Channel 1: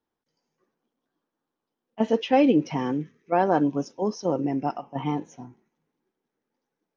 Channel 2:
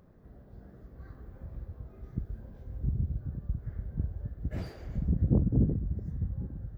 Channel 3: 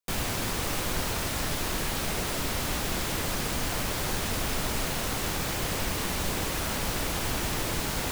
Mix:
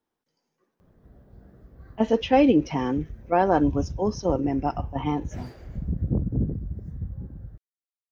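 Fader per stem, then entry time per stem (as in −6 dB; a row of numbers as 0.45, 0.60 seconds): +1.0 dB, 0.0 dB, muted; 0.00 s, 0.80 s, muted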